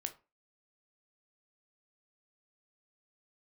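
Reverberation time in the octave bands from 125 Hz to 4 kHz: 0.30 s, 0.30 s, 0.30 s, 0.30 s, 0.25 s, 0.20 s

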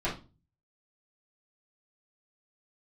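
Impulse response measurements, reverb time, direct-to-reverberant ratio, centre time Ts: 0.30 s, -10.0 dB, 27 ms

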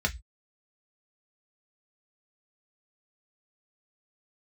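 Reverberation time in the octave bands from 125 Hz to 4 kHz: 0.35 s, 0.15 s, 0.10 s, 0.15 s, 0.20 s, 0.20 s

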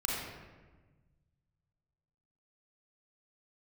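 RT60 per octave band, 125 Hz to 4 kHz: 2.6 s, 1.8 s, 1.4 s, 1.2 s, 1.1 s, 0.80 s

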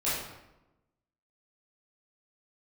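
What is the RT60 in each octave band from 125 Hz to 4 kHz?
1.2 s, 1.2 s, 1.0 s, 0.95 s, 0.80 s, 0.65 s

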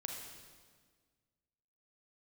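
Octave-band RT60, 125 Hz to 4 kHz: 2.1 s, 1.9 s, 1.7 s, 1.5 s, 1.4 s, 1.4 s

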